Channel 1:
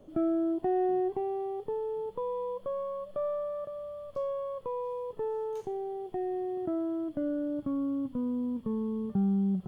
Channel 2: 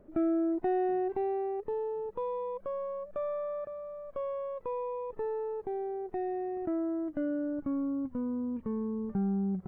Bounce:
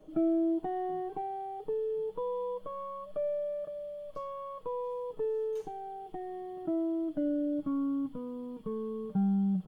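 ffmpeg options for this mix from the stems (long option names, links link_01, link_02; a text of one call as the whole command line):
ffmpeg -i stem1.wav -i stem2.wav -filter_complex "[0:a]equalizer=frequency=130:width_type=o:width=0.23:gain=-12.5,aecho=1:1:6.4:0.92,volume=-3.5dB[link_01];[1:a]aecho=1:1:2.1:0.87,volume=-15.5dB[link_02];[link_01][link_02]amix=inputs=2:normalize=0" out.wav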